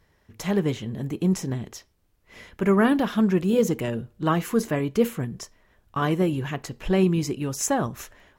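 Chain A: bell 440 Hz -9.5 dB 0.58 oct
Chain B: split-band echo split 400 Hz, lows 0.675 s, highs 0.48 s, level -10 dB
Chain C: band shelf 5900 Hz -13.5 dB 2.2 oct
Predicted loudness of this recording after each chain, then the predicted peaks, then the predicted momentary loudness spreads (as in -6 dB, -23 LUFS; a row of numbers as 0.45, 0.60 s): -26.5, -24.5, -25.0 LUFS; -10.5, -8.0, -8.0 dBFS; 12, 12, 13 LU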